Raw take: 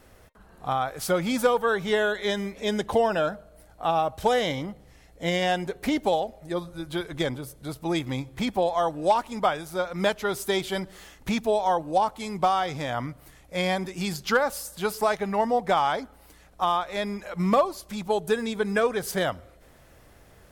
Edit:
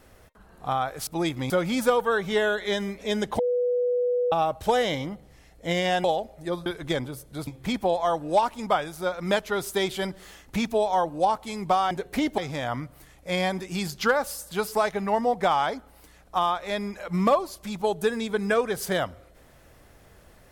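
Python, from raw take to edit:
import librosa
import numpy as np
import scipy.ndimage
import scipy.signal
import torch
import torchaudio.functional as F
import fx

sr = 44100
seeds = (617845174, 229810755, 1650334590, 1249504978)

y = fx.edit(x, sr, fx.bleep(start_s=2.96, length_s=0.93, hz=491.0, db=-21.0),
    fx.move(start_s=5.61, length_s=0.47, to_s=12.64),
    fx.cut(start_s=6.7, length_s=0.26),
    fx.move(start_s=7.77, length_s=0.43, to_s=1.07), tone=tone)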